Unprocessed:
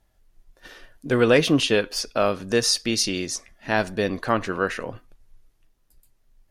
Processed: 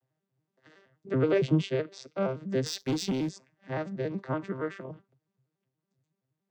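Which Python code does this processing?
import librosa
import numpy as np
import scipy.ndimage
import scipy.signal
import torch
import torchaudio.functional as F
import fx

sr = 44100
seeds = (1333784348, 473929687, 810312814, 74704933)

y = fx.vocoder_arp(x, sr, chord='minor triad', root=48, every_ms=94)
y = fx.leveller(y, sr, passes=2, at=(2.66, 3.29))
y = y * 10.0 ** (-7.0 / 20.0)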